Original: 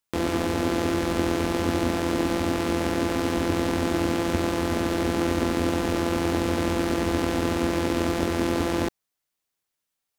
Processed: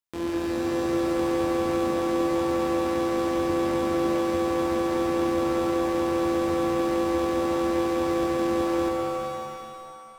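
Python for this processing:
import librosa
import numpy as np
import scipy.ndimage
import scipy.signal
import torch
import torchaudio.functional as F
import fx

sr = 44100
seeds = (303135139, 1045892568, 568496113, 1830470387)

y = fx.comb_fb(x, sr, f0_hz=340.0, decay_s=0.2, harmonics='odd', damping=0.0, mix_pct=60)
y = fx.rev_shimmer(y, sr, seeds[0], rt60_s=2.0, semitones=7, shimmer_db=-2, drr_db=2.5)
y = F.gain(torch.from_numpy(y), -2.5).numpy()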